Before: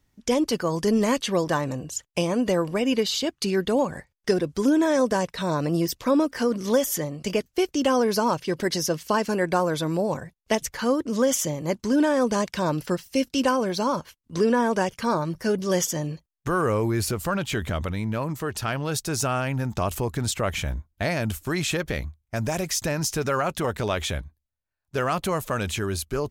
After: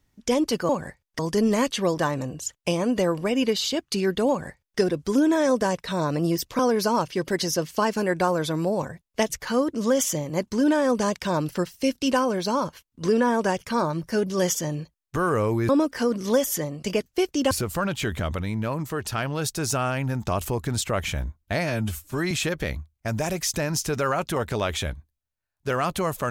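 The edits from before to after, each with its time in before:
3.79–4.29 s: copy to 0.69 s
6.09–7.91 s: move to 17.01 s
21.15–21.59 s: stretch 1.5×

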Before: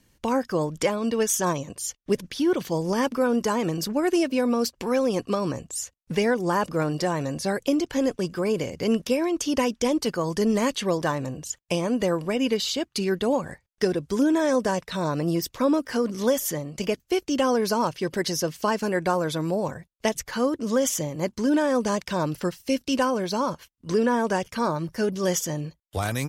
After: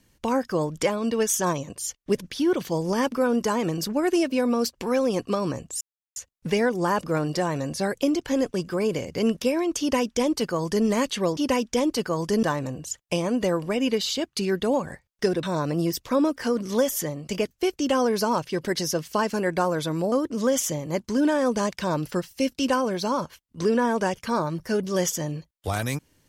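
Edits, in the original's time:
5.81 s: insert silence 0.35 s
9.45–10.51 s: copy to 11.02 s
14.02–14.92 s: delete
19.61–20.41 s: delete

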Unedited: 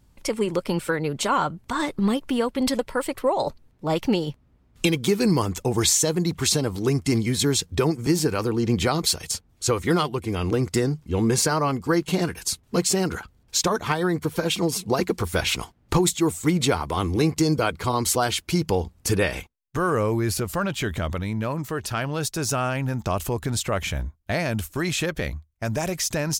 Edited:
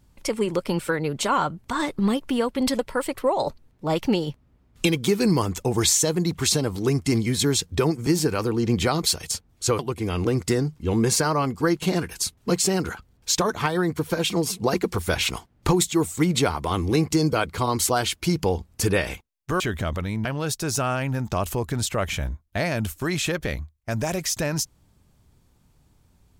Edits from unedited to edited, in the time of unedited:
9.79–10.05 s: delete
19.86–20.77 s: delete
21.42–21.99 s: delete

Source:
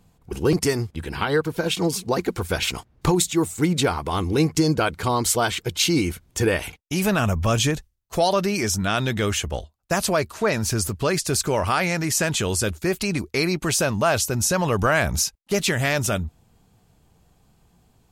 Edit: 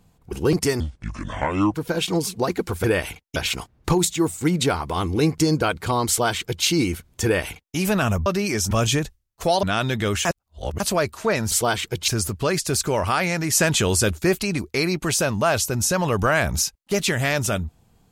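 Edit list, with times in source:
0.80–1.43 s: speed 67%
5.25–5.82 s: copy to 10.68 s
6.41–6.93 s: copy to 2.53 s
8.35–8.80 s: move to 7.43 s
9.42–9.97 s: reverse
12.13–12.99 s: gain +3.5 dB

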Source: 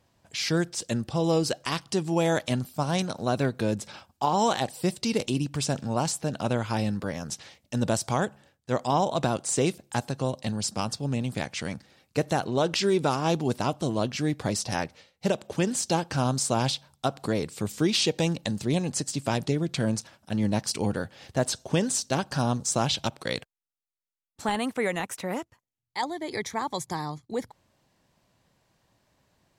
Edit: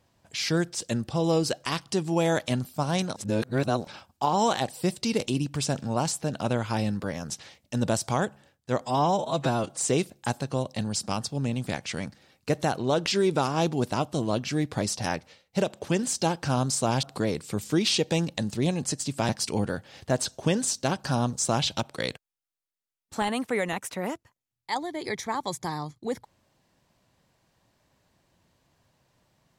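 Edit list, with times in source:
3.16–3.87 s: reverse
8.81–9.45 s: stretch 1.5×
16.71–17.11 s: delete
19.37–20.56 s: delete

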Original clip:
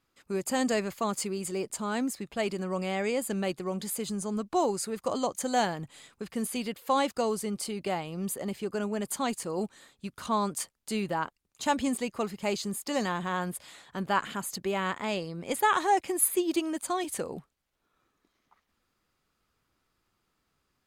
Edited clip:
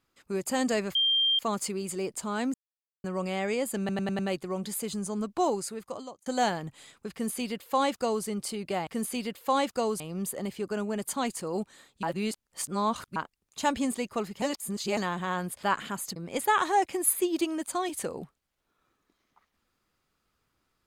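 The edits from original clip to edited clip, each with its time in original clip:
0.95 s: add tone 3.18 kHz -21.5 dBFS 0.44 s
2.10–2.60 s: mute
3.35 s: stutter 0.10 s, 5 plays
4.63–5.42 s: fade out
6.28–7.41 s: copy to 8.03 s
10.06–11.19 s: reverse
12.45–13.00 s: reverse
13.66–14.08 s: delete
14.61–15.31 s: delete

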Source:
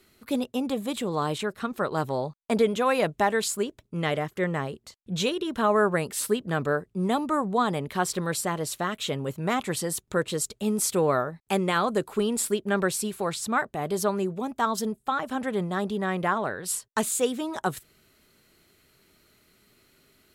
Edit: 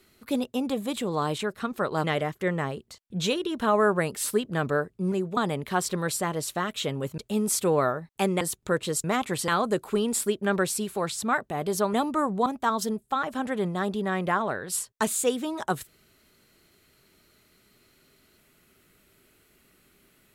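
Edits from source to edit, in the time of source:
2.04–4.00 s: delete
7.08–7.61 s: swap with 14.17–14.42 s
9.42–9.86 s: swap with 10.49–11.72 s

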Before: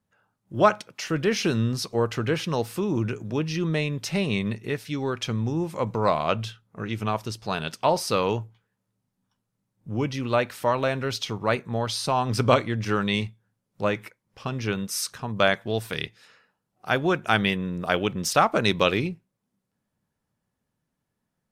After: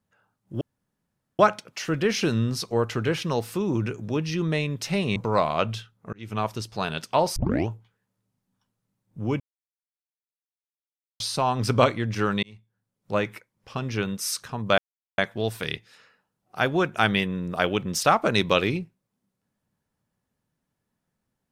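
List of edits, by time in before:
0.61 s: insert room tone 0.78 s
4.38–5.86 s: delete
6.83–7.12 s: fade in
8.06 s: tape start 0.32 s
10.10–11.90 s: mute
13.13–13.87 s: fade in
15.48 s: insert silence 0.40 s

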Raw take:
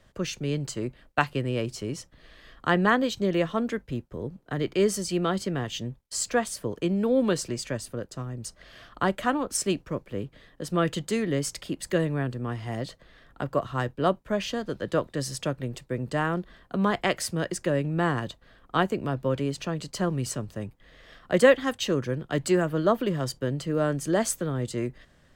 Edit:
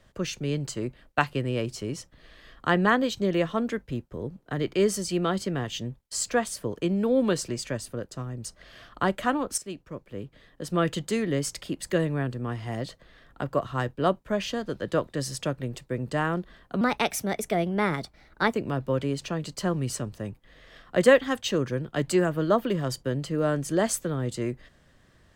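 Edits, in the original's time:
9.58–10.76 s: fade in, from -14 dB
16.81–18.90 s: speed 121%

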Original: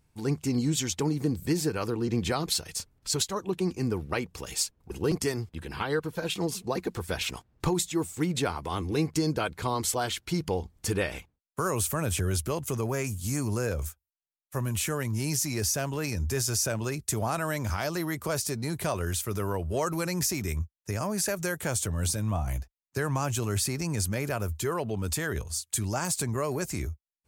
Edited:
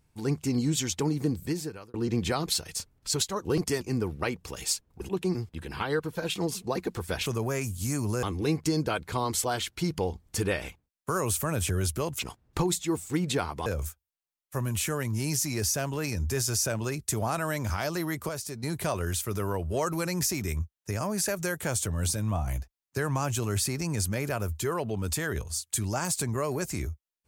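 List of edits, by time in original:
1.29–1.94 s: fade out
3.45–3.71 s: swap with 4.99–5.35 s
7.26–8.73 s: swap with 12.69–13.66 s
18.29–18.63 s: gain -6 dB

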